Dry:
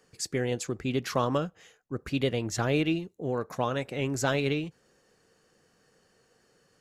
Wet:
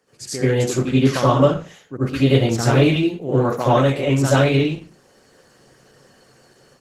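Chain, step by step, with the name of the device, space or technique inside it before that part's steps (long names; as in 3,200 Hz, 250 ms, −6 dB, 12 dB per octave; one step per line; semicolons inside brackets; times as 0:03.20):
far-field microphone of a smart speaker (convolution reverb RT60 0.35 s, pre-delay 70 ms, DRR −8 dB; high-pass filter 100 Hz 12 dB per octave; automatic gain control gain up to 7.5 dB; level −1 dB; Opus 16 kbit/s 48,000 Hz)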